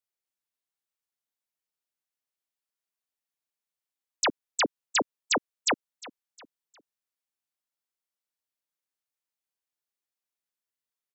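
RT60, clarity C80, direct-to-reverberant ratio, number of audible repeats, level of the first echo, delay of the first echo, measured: no reverb, no reverb, no reverb, 2, -19.5 dB, 356 ms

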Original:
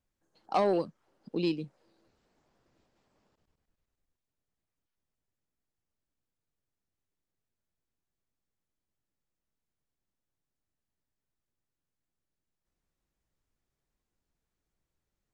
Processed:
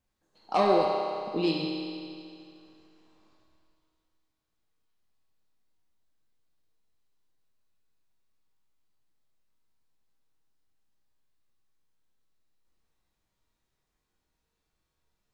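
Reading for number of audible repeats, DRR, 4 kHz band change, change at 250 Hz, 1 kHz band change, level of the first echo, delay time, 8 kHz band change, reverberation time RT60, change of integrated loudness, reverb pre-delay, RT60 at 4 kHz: no echo, -3.5 dB, +8.5 dB, +3.5 dB, +6.0 dB, no echo, no echo, no reading, 2.4 s, +3.5 dB, 6 ms, 2.3 s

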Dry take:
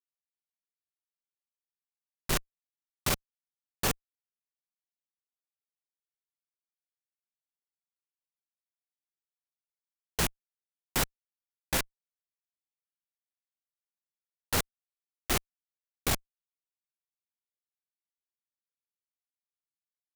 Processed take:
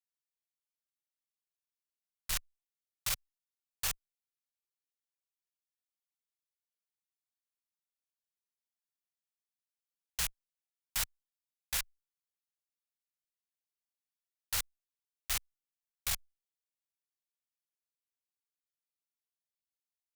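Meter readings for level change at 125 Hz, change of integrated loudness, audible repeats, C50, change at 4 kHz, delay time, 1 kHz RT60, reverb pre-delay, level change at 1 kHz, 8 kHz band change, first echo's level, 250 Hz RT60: -13.5 dB, -4.5 dB, no echo, no reverb, -3.5 dB, no echo, no reverb, no reverb, -11.5 dB, -2.5 dB, no echo, no reverb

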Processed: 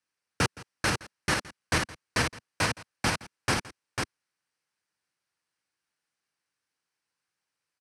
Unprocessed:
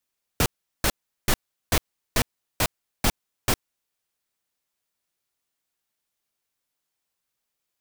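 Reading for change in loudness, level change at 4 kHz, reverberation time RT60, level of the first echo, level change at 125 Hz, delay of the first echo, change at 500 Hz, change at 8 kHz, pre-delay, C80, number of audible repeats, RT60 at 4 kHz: -2.5 dB, -1.5 dB, no reverb, -20.0 dB, -2.0 dB, 167 ms, -2.0 dB, -4.5 dB, no reverb, no reverb, 2, no reverb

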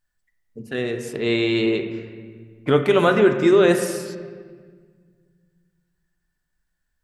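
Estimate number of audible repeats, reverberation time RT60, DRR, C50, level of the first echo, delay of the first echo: no echo, 1.7 s, 5.0 dB, 7.5 dB, no echo, no echo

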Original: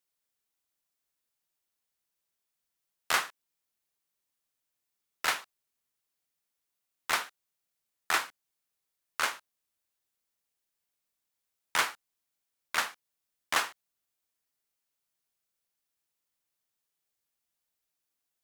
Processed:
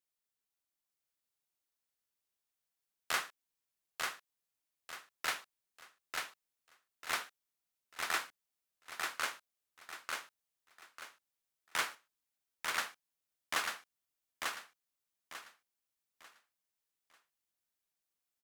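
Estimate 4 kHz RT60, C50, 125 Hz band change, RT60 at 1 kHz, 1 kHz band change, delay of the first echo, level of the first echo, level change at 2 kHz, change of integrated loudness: no reverb, no reverb, -5.0 dB, no reverb, -6.0 dB, 894 ms, -3.5 dB, -5.0 dB, -8.0 dB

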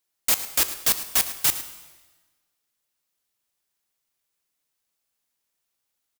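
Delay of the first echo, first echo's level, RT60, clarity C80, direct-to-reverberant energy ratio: 109 ms, -15.0 dB, 1.3 s, 11.5 dB, 9.0 dB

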